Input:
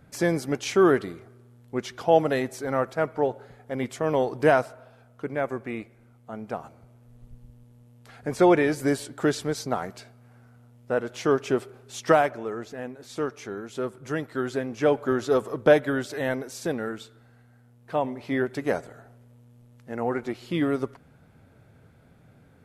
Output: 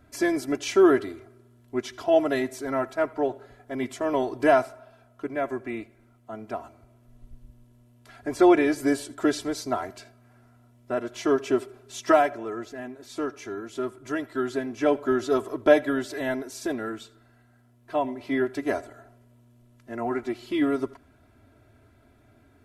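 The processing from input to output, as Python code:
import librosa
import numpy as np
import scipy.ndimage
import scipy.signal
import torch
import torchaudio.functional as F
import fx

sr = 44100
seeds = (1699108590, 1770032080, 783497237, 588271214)

p1 = x + 0.93 * np.pad(x, (int(3.0 * sr / 1000.0), 0))[:len(x)]
p2 = p1 + fx.echo_single(p1, sr, ms=81, db=-22.5, dry=0)
y = p2 * librosa.db_to_amplitude(-3.0)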